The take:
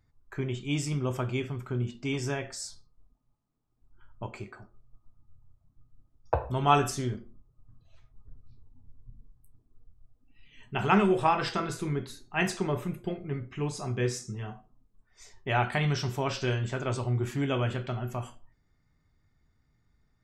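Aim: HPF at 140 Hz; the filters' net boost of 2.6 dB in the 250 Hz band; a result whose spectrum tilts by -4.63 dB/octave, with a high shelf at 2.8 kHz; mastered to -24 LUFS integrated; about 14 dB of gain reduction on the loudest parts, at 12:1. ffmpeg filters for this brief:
-af "highpass=140,equalizer=f=250:t=o:g=4.5,highshelf=f=2800:g=5,acompressor=threshold=0.0316:ratio=12,volume=4.22"

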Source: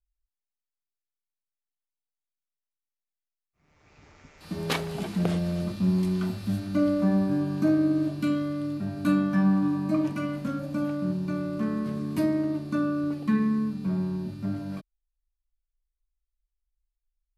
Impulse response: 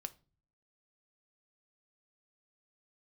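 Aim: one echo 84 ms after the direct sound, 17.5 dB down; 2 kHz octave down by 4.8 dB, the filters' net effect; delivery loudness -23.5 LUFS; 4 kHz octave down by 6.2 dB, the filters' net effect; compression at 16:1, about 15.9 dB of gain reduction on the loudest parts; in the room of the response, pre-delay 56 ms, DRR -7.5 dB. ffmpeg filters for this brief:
-filter_complex "[0:a]equalizer=f=2000:t=o:g=-5.5,equalizer=f=4000:t=o:g=-6,acompressor=threshold=0.0178:ratio=16,aecho=1:1:84:0.133,asplit=2[s0][s1];[1:a]atrim=start_sample=2205,adelay=56[s2];[s1][s2]afir=irnorm=-1:irlink=0,volume=3.55[s3];[s0][s3]amix=inputs=2:normalize=0,volume=2.24"

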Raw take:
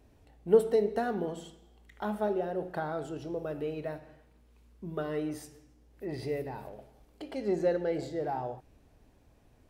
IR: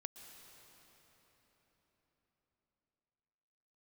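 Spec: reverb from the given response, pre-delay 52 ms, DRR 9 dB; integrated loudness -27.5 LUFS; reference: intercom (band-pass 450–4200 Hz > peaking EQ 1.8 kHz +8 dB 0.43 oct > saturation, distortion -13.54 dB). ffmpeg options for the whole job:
-filter_complex "[0:a]asplit=2[s0][s1];[1:a]atrim=start_sample=2205,adelay=52[s2];[s1][s2]afir=irnorm=-1:irlink=0,volume=0.562[s3];[s0][s3]amix=inputs=2:normalize=0,highpass=450,lowpass=4200,equalizer=f=1800:t=o:w=0.43:g=8,asoftclip=threshold=0.0708,volume=2.82"

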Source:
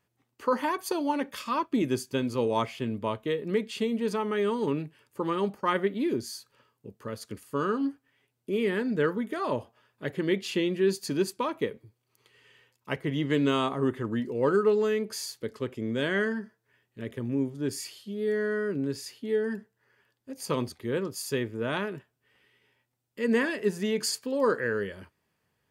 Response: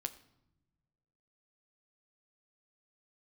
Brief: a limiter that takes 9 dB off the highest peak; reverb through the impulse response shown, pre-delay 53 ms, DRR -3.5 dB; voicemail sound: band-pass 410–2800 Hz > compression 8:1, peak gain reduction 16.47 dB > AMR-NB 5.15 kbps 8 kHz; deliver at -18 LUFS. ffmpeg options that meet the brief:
-filter_complex "[0:a]alimiter=limit=0.0891:level=0:latency=1,asplit=2[s0][s1];[1:a]atrim=start_sample=2205,adelay=53[s2];[s1][s2]afir=irnorm=-1:irlink=0,volume=1.68[s3];[s0][s3]amix=inputs=2:normalize=0,highpass=410,lowpass=2800,acompressor=threshold=0.0141:ratio=8,volume=17.8" -ar 8000 -c:a libopencore_amrnb -b:a 5150

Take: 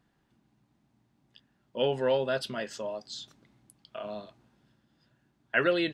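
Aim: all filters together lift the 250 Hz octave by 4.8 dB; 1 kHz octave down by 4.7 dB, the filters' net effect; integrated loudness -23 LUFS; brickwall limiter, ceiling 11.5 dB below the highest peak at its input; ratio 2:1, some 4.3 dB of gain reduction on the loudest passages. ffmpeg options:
-af "equalizer=f=250:t=o:g=7.5,equalizer=f=1000:t=o:g=-8,acompressor=threshold=0.0355:ratio=2,volume=6.68,alimiter=limit=0.251:level=0:latency=1"

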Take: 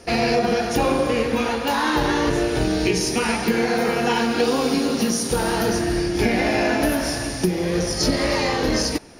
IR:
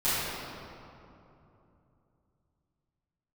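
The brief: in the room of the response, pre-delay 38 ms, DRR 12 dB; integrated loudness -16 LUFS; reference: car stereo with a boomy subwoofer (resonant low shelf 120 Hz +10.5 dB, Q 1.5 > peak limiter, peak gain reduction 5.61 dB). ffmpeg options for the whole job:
-filter_complex "[0:a]asplit=2[s0][s1];[1:a]atrim=start_sample=2205,adelay=38[s2];[s1][s2]afir=irnorm=-1:irlink=0,volume=0.0562[s3];[s0][s3]amix=inputs=2:normalize=0,lowshelf=f=120:t=q:w=1.5:g=10.5,volume=1.78,alimiter=limit=0.562:level=0:latency=1"

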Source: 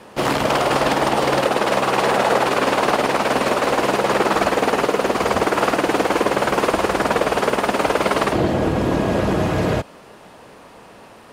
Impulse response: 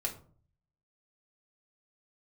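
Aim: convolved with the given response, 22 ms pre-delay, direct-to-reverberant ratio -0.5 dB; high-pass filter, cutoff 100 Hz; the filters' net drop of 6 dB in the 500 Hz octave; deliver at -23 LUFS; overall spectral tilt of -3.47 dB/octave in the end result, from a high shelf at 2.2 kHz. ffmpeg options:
-filter_complex "[0:a]highpass=100,equalizer=f=500:t=o:g=-8,highshelf=f=2200:g=5,asplit=2[s0][s1];[1:a]atrim=start_sample=2205,adelay=22[s2];[s1][s2]afir=irnorm=-1:irlink=0,volume=0.794[s3];[s0][s3]amix=inputs=2:normalize=0,volume=0.501"

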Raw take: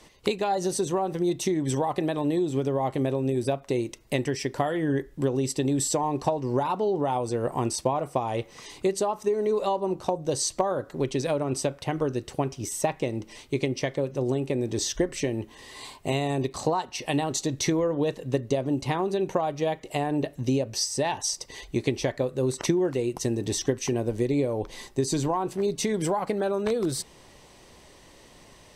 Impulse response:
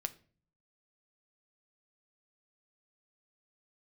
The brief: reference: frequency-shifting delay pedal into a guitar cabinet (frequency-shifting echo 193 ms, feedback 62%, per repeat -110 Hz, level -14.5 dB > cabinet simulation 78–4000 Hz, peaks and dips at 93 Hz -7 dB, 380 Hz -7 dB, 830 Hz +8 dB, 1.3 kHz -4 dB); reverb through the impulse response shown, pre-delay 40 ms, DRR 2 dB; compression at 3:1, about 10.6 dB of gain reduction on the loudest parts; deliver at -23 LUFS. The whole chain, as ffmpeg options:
-filter_complex "[0:a]acompressor=threshold=0.0178:ratio=3,asplit=2[s0][s1];[1:a]atrim=start_sample=2205,adelay=40[s2];[s1][s2]afir=irnorm=-1:irlink=0,volume=0.841[s3];[s0][s3]amix=inputs=2:normalize=0,asplit=8[s4][s5][s6][s7][s8][s9][s10][s11];[s5]adelay=193,afreqshift=-110,volume=0.188[s12];[s6]adelay=386,afreqshift=-220,volume=0.116[s13];[s7]adelay=579,afreqshift=-330,volume=0.0724[s14];[s8]adelay=772,afreqshift=-440,volume=0.0447[s15];[s9]adelay=965,afreqshift=-550,volume=0.0279[s16];[s10]adelay=1158,afreqshift=-660,volume=0.0172[s17];[s11]adelay=1351,afreqshift=-770,volume=0.0107[s18];[s4][s12][s13][s14][s15][s16][s17][s18]amix=inputs=8:normalize=0,highpass=78,equalizer=f=93:t=q:w=4:g=-7,equalizer=f=380:t=q:w=4:g=-7,equalizer=f=830:t=q:w=4:g=8,equalizer=f=1300:t=q:w=4:g=-4,lowpass=f=4000:w=0.5412,lowpass=f=4000:w=1.3066,volume=3.98"

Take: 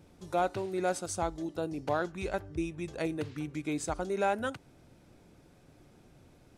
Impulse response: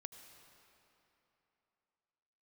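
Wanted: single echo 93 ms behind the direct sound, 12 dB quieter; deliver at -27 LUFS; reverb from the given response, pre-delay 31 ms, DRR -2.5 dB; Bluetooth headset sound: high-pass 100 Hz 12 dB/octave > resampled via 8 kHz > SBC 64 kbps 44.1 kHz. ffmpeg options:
-filter_complex "[0:a]aecho=1:1:93:0.251,asplit=2[s0][s1];[1:a]atrim=start_sample=2205,adelay=31[s2];[s1][s2]afir=irnorm=-1:irlink=0,volume=2.37[s3];[s0][s3]amix=inputs=2:normalize=0,highpass=100,aresample=8000,aresample=44100,volume=1.41" -ar 44100 -c:a sbc -b:a 64k

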